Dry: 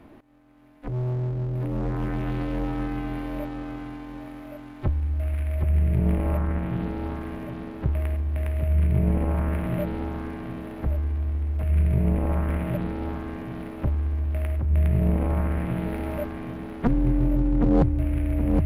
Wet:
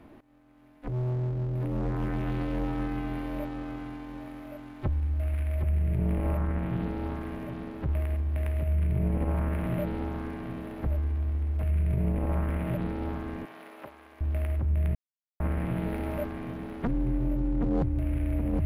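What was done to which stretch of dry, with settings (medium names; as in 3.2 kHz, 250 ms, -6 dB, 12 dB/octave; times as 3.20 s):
13.45–14.21 s: Bessel high-pass 750 Hz
14.95–15.40 s: mute
whole clip: peak limiter -18 dBFS; trim -2.5 dB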